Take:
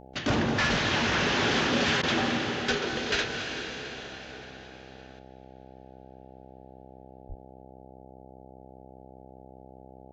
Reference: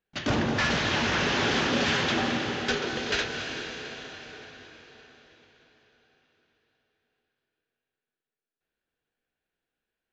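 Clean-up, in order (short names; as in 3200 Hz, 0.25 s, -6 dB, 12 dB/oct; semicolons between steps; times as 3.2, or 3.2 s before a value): de-hum 65 Hz, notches 13; de-plosive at 0.7/7.28; interpolate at 2.02, 11 ms; gain 0 dB, from 5.19 s +8.5 dB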